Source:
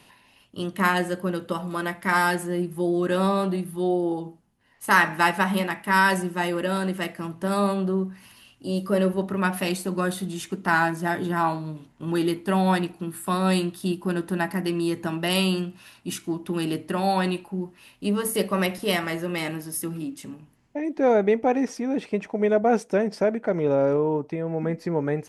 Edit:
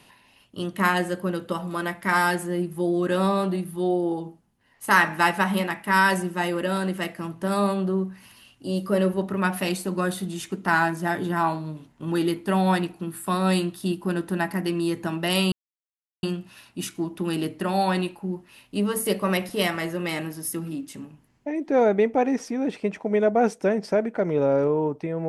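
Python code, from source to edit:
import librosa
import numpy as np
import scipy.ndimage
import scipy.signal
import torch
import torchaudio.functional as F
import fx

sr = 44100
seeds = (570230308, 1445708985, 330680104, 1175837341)

y = fx.edit(x, sr, fx.insert_silence(at_s=15.52, length_s=0.71), tone=tone)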